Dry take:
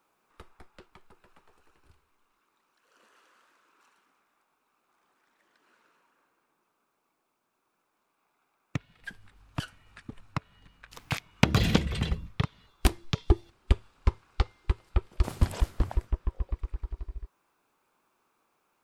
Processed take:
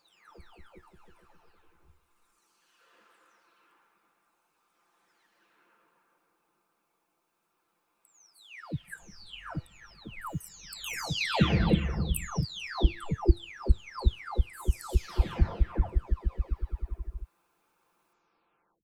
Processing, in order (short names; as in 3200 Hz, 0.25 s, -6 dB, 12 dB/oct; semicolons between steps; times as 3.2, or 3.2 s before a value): spectral delay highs early, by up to 0.701 s; gain +2 dB